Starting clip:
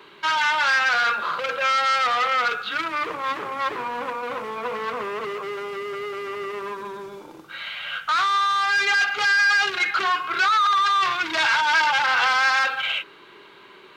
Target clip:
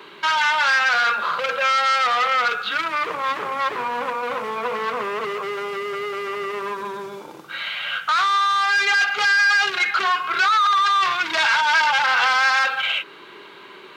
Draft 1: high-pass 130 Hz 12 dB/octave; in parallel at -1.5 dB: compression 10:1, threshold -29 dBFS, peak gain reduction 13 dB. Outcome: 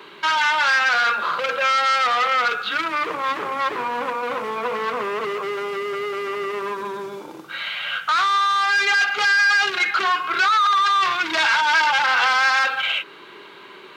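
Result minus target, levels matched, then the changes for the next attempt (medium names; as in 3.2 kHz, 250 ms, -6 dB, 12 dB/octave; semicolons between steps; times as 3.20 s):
250 Hz band +3.0 dB
add after high-pass: dynamic bell 310 Hz, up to -6 dB, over -50 dBFS, Q 2.9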